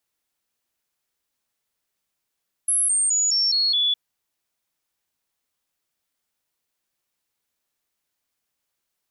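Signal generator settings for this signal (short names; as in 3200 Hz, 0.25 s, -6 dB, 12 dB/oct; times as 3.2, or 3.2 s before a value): stepped sine 10900 Hz down, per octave 3, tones 6, 0.21 s, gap 0.00 s -17.5 dBFS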